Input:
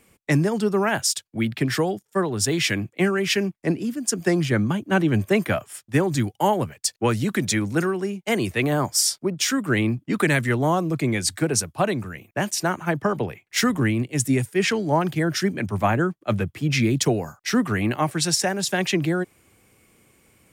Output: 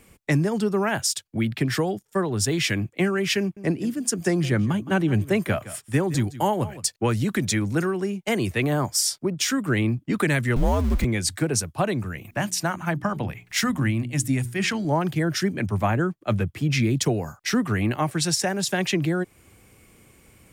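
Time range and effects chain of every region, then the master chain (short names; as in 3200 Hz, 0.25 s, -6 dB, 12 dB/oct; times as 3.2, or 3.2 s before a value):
3.4–6.89 bell 9300 Hz +2 dB 0.28 oct + echo 0.165 s -18 dB
10.56–11.05 zero-crossing step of -29 dBFS + frequency shift -100 Hz
12.25–14.85 bell 420 Hz -12.5 dB 0.41 oct + upward compressor, threshold -35 dBFS + notches 60/120/180/240/300/360/420 Hz
whole clip: low shelf 89 Hz +9.5 dB; compressor 1.5:1, threshold -32 dBFS; gain +3 dB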